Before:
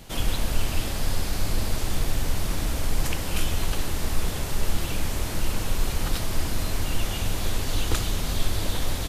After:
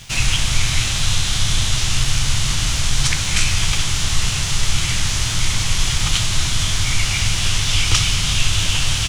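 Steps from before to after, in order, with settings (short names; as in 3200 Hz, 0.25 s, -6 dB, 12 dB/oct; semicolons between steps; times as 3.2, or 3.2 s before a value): graphic EQ 125/250/500/2000/4000/8000 Hz +11/-6/-7/+3/+9/+11 dB; crossover distortion -47.5 dBFS; formant shift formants -4 st; gain +4.5 dB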